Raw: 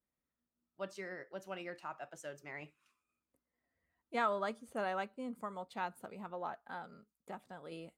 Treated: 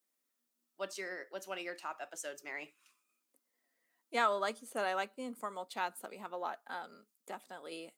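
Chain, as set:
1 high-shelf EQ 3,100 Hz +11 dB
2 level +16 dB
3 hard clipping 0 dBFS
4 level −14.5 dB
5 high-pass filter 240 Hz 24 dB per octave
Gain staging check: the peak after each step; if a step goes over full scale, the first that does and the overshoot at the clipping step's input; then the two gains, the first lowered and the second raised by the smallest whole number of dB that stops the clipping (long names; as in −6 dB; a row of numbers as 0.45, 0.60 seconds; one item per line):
−20.5, −4.5, −4.5, −19.0, −17.5 dBFS
no step passes full scale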